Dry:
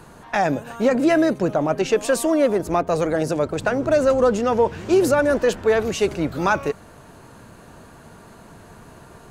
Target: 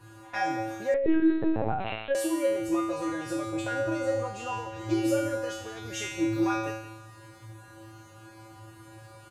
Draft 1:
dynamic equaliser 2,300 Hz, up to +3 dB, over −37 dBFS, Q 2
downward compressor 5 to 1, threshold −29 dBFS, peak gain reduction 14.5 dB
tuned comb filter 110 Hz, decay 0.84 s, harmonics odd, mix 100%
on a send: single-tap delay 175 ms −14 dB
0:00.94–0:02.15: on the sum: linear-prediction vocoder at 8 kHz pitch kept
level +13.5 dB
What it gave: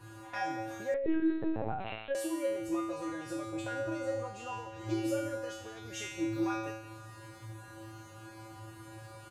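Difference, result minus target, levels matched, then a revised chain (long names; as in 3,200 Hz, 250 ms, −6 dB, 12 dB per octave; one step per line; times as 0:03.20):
downward compressor: peak gain reduction +7 dB
dynamic equaliser 2,300 Hz, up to +3 dB, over −37 dBFS, Q 2
downward compressor 5 to 1, threshold −20.5 dBFS, peak gain reduction 8 dB
tuned comb filter 110 Hz, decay 0.84 s, harmonics odd, mix 100%
on a send: single-tap delay 175 ms −14 dB
0:00.94–0:02.15: on the sum: linear-prediction vocoder at 8 kHz pitch kept
level +13.5 dB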